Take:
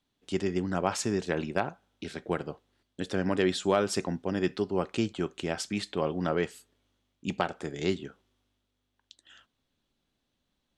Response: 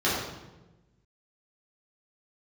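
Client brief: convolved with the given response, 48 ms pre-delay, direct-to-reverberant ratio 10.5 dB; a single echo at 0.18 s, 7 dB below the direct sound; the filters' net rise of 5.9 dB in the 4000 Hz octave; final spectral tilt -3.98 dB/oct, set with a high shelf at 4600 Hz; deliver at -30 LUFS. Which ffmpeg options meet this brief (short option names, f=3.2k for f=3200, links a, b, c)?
-filter_complex "[0:a]equalizer=f=4k:t=o:g=3,highshelf=f=4.6k:g=8.5,aecho=1:1:180:0.447,asplit=2[a][b];[1:a]atrim=start_sample=2205,adelay=48[c];[b][c]afir=irnorm=-1:irlink=0,volume=-25dB[d];[a][d]amix=inputs=2:normalize=0,volume=-1dB"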